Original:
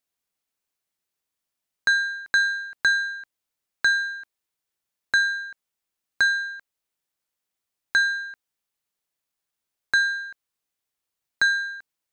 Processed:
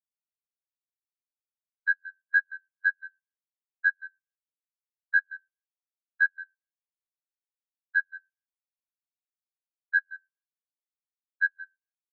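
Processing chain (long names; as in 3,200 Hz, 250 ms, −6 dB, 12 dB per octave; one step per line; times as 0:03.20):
high-shelf EQ 5,700 Hz +10.5 dB
output level in coarse steps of 18 dB
ring modulation 44 Hz
single-tap delay 176 ms −5 dB
on a send at −18 dB: convolution reverb RT60 0.80 s, pre-delay 3 ms
on the sum: every bin expanded away from the loudest bin 4 to 1
level −2 dB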